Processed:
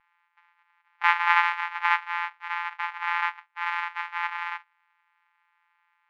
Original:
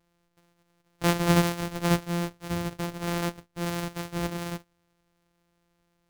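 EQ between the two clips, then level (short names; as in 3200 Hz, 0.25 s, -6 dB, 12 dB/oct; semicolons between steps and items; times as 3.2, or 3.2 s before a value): brick-wall FIR high-pass 770 Hz; synth low-pass 2200 Hz, resonance Q 2.5; tilt -3.5 dB/oct; +7.5 dB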